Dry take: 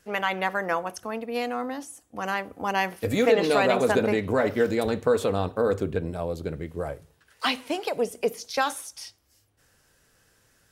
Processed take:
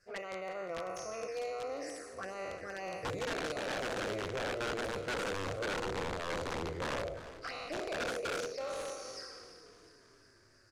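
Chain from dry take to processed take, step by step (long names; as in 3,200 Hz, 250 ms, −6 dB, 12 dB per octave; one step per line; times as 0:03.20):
peak hold with a decay on every bin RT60 1.32 s
parametric band 4,800 Hz +15 dB 0.3 octaves
notch filter 440 Hz, Q 12
reversed playback
downward compressor 10 to 1, threshold −28 dBFS, peak gain reduction 14.5 dB
reversed playback
phaser with its sweep stopped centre 900 Hz, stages 6
flanger swept by the level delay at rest 11.2 ms, full sweep at −33 dBFS
wrap-around overflow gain 30 dB
high-frequency loss of the air 79 metres
on a send: echo with shifted repeats 352 ms, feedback 58%, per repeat −38 Hz, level −15 dB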